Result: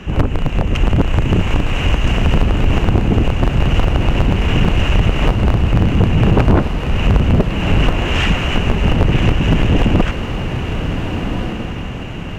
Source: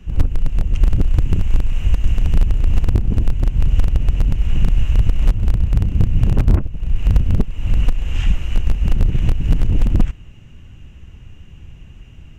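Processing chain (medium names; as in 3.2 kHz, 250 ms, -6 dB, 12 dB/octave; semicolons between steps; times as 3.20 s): echo that smears into a reverb 1435 ms, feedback 45%, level -10 dB; overdrive pedal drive 31 dB, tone 1.4 kHz, clips at 0 dBFS; trim -1 dB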